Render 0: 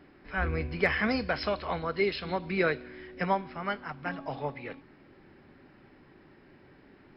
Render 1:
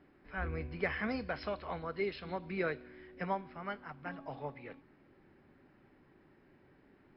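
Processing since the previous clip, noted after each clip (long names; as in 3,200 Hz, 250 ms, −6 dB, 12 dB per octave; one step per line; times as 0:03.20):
high-shelf EQ 4,500 Hz −10.5 dB
level −7.5 dB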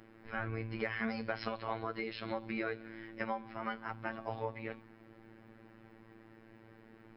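downward compressor 4 to 1, threshold −40 dBFS, peak gain reduction 10 dB
phases set to zero 112 Hz
level +8.5 dB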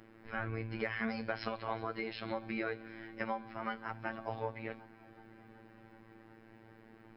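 feedback echo with a high-pass in the loop 374 ms, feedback 73%, high-pass 190 Hz, level −23.5 dB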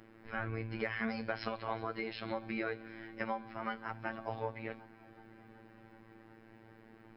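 no processing that can be heard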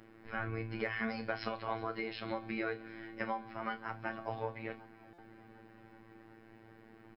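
double-tracking delay 33 ms −12 dB
buffer that repeats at 0:05.13, samples 256, times 8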